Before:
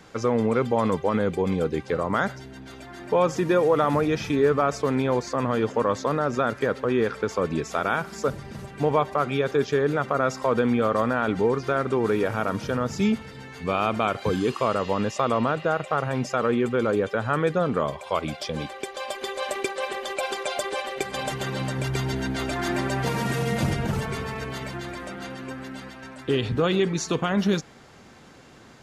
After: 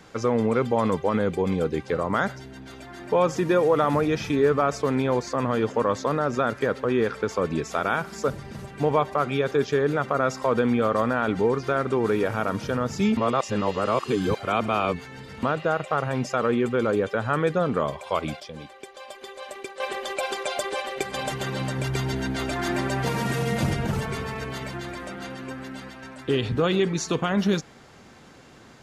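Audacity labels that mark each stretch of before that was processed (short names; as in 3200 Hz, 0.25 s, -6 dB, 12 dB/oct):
13.170000	15.430000	reverse
18.400000	19.800000	gain -9 dB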